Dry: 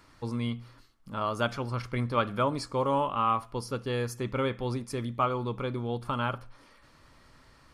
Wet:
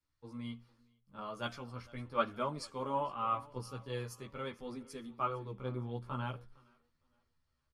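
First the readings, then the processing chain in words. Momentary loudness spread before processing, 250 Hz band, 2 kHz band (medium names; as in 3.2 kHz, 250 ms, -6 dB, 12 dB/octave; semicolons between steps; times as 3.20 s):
7 LU, -10.5 dB, -10.0 dB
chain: feedback delay 460 ms, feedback 48%, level -18.5 dB; chorus voices 2, 0.42 Hz, delay 14 ms, depth 2.2 ms; three bands expanded up and down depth 70%; trim -7.5 dB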